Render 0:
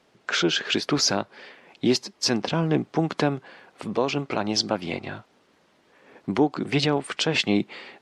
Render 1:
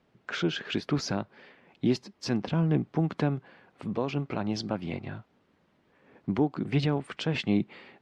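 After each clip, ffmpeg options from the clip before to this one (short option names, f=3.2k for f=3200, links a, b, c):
-af "bass=f=250:g=10,treble=f=4k:g=-9,volume=-8dB"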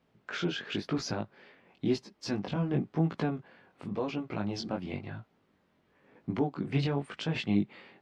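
-af "flanger=delay=17.5:depth=4.9:speed=0.95"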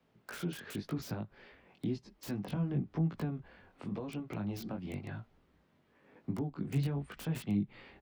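-filter_complex "[0:a]acrossover=split=230[a][b];[b]acompressor=threshold=-40dB:ratio=8[c];[a][c]amix=inputs=2:normalize=0,acrossover=split=150|1600[d][e][f];[d]asplit=6[g][h][i][j][k][l];[h]adelay=202,afreqshift=-84,volume=-23.5dB[m];[i]adelay=404,afreqshift=-168,volume=-27.5dB[n];[j]adelay=606,afreqshift=-252,volume=-31.5dB[o];[k]adelay=808,afreqshift=-336,volume=-35.5dB[p];[l]adelay=1010,afreqshift=-420,volume=-39.6dB[q];[g][m][n][o][p][q]amix=inputs=6:normalize=0[r];[f]aeval=exprs='(mod(119*val(0)+1,2)-1)/119':c=same[s];[r][e][s]amix=inputs=3:normalize=0,volume=-1dB"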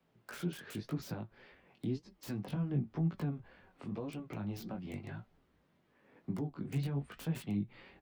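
-af "flanger=delay=5.2:depth=3.8:regen=65:speed=1.9:shape=sinusoidal,volume=2dB"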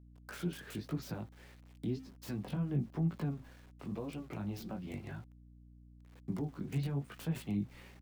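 -af "bandreject=f=262.5:t=h:w=4,bandreject=f=525:t=h:w=4,bandreject=f=787.5:t=h:w=4,aeval=exprs='val(0)*gte(abs(val(0)),0.00112)':c=same,aeval=exprs='val(0)+0.00158*(sin(2*PI*60*n/s)+sin(2*PI*2*60*n/s)/2+sin(2*PI*3*60*n/s)/3+sin(2*PI*4*60*n/s)/4+sin(2*PI*5*60*n/s)/5)':c=same"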